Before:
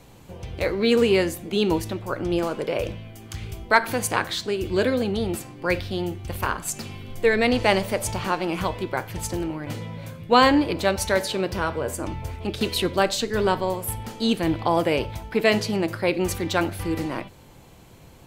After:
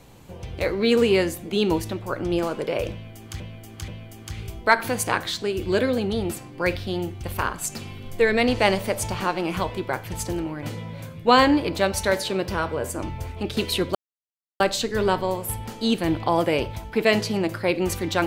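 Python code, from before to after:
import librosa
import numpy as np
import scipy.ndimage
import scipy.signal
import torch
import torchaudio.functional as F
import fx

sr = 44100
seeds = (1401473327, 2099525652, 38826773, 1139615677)

y = fx.edit(x, sr, fx.repeat(start_s=2.92, length_s=0.48, count=3),
    fx.insert_silence(at_s=12.99, length_s=0.65), tone=tone)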